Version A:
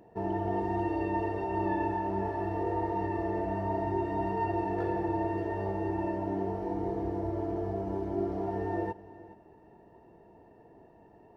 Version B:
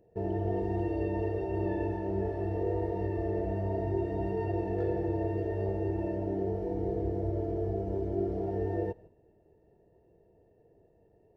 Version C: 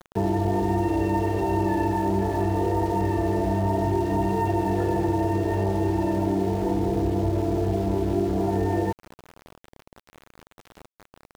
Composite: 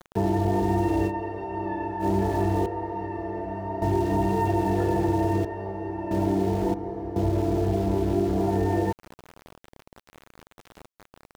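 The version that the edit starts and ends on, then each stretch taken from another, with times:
C
0:01.09–0:02.02: punch in from A, crossfade 0.06 s
0:02.66–0:03.82: punch in from A
0:05.45–0:06.11: punch in from A
0:06.74–0:07.16: punch in from A
not used: B

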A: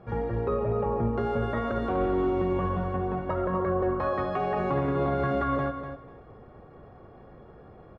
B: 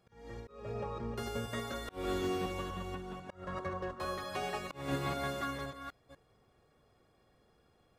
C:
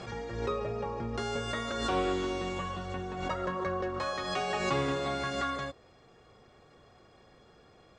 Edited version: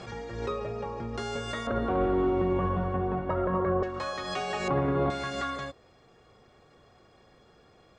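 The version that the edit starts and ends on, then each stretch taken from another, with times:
C
0:01.67–0:03.83: punch in from A
0:04.68–0:05.10: punch in from A
not used: B

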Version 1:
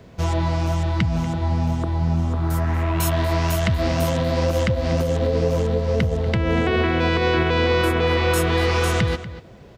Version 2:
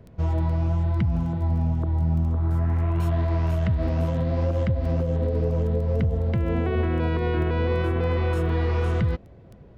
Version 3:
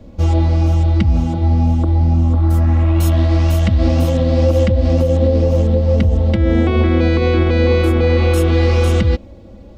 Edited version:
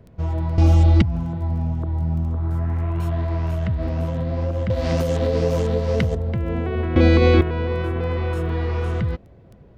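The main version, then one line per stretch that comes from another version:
2
0:00.58–0:01.02: punch in from 3
0:04.70–0:06.15: punch in from 1
0:06.96–0:07.41: punch in from 3

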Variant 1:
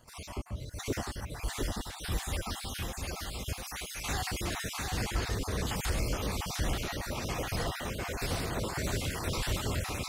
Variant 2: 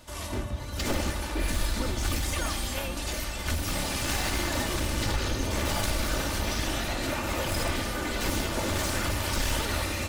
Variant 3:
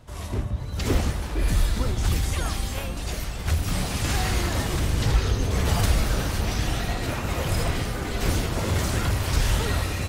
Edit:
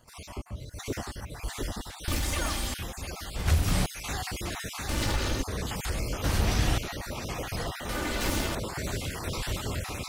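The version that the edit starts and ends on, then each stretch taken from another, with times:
1
0:02.08–0:02.74: punch in from 2
0:03.36–0:03.86: punch in from 3
0:04.89–0:05.42: punch in from 2
0:06.24–0:06.78: punch in from 3
0:07.89–0:08.55: punch in from 2

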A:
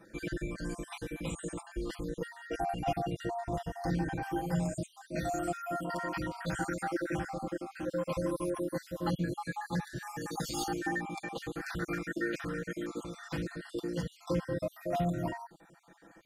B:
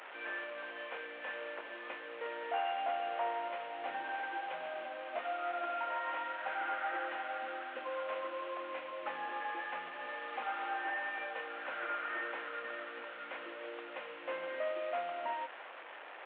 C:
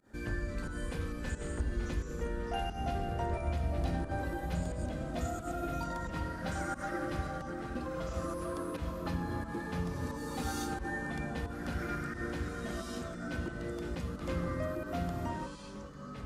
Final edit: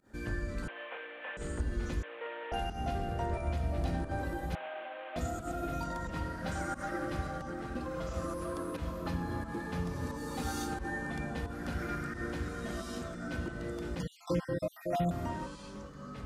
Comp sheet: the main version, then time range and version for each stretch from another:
C
0:00.68–0:01.37: punch in from B
0:02.03–0:02.52: punch in from B
0:04.55–0:05.16: punch in from B
0:14.00–0:15.11: punch in from A

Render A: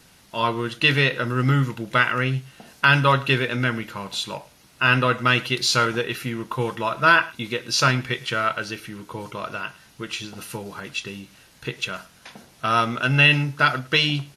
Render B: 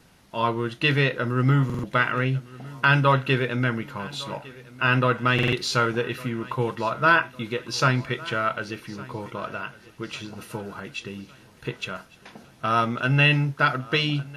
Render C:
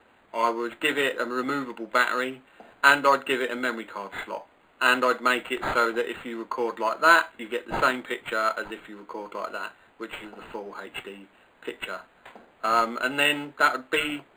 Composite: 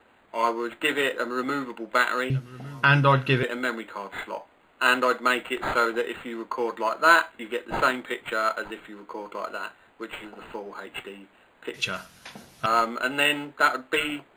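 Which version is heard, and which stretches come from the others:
C
0:02.30–0:03.43: punch in from B
0:11.74–0:12.66: punch in from A

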